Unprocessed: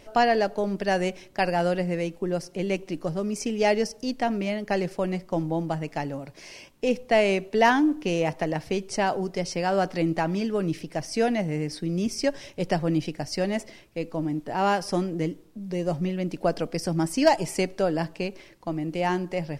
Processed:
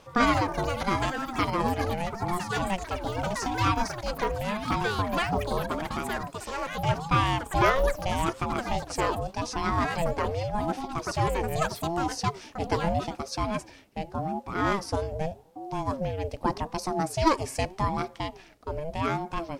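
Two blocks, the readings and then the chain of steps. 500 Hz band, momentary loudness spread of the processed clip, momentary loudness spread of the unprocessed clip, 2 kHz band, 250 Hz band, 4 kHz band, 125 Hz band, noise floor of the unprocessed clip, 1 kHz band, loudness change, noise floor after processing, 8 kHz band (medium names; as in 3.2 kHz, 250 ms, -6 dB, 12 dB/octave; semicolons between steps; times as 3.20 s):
-5.0 dB, 9 LU, 10 LU, -1.0 dB, -5.0 dB, -0.5 dB, 0.0 dB, -51 dBFS, +1.0 dB, -2.5 dB, -50 dBFS, -1.0 dB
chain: ever faster or slower copies 93 ms, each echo +7 st, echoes 3, each echo -6 dB; ring modulator with a swept carrier 400 Hz, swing 35%, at 0.83 Hz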